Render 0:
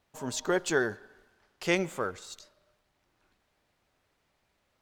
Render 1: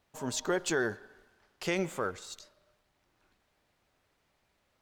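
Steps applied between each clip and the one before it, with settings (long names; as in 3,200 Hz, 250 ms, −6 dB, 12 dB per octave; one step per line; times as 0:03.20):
brickwall limiter −20 dBFS, peak gain reduction 7 dB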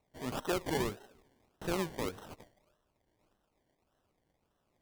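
sample-and-hold swept by an LFO 27×, swing 60% 1.7 Hz
level −3 dB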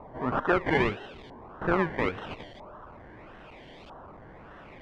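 converter with a step at zero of −50 dBFS
auto-filter low-pass saw up 0.77 Hz 980–3,700 Hz
level +7 dB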